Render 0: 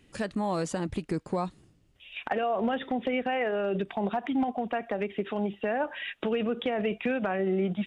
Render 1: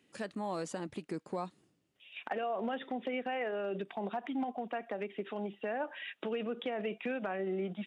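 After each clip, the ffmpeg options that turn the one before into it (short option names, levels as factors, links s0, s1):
-af "highpass=200,volume=0.447"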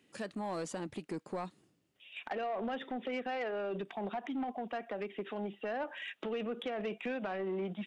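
-af "asoftclip=type=tanh:threshold=0.0282,volume=1.12"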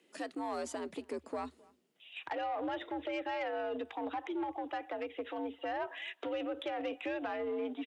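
-filter_complex "[0:a]asplit=2[s0][s1];[s1]adelay=262.4,volume=0.0562,highshelf=f=4000:g=-5.9[s2];[s0][s2]amix=inputs=2:normalize=0,afreqshift=74"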